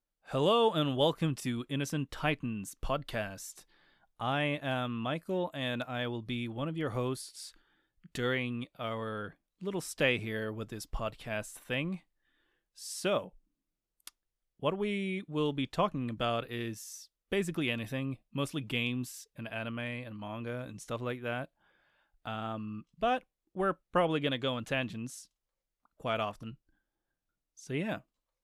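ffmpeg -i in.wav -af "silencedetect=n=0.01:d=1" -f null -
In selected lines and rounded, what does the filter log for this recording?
silence_start: 26.51
silence_end: 27.70 | silence_duration: 1.19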